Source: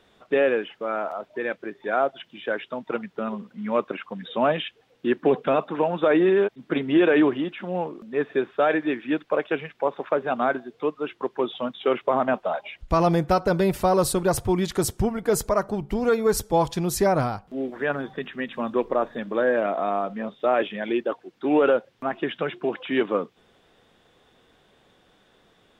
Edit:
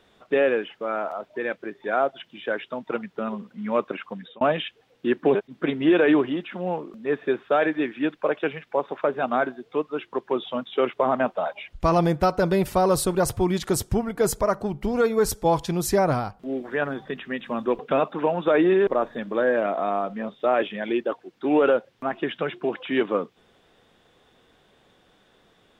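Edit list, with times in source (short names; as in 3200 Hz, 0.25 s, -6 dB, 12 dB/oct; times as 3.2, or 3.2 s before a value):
4.13–4.41 fade out
5.35–6.43 move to 18.87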